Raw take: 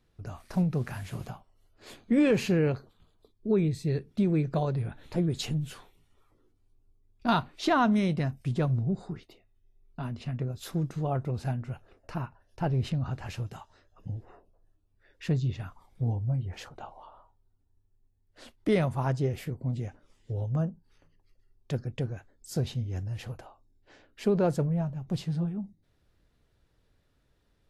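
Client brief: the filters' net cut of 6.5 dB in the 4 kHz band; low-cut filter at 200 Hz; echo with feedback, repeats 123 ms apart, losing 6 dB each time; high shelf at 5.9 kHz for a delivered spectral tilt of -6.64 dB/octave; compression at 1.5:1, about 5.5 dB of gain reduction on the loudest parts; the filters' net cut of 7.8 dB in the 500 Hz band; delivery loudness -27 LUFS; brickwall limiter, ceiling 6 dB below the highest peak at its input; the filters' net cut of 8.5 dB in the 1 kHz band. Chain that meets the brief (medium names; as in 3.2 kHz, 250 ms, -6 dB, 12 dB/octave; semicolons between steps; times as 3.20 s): high-pass 200 Hz; peaking EQ 500 Hz -8 dB; peaking EQ 1 kHz -8 dB; peaking EQ 4 kHz -5 dB; treble shelf 5.9 kHz -7.5 dB; compression 1.5:1, threshold -39 dBFS; peak limiter -29.5 dBFS; feedback delay 123 ms, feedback 50%, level -6 dB; trim +14 dB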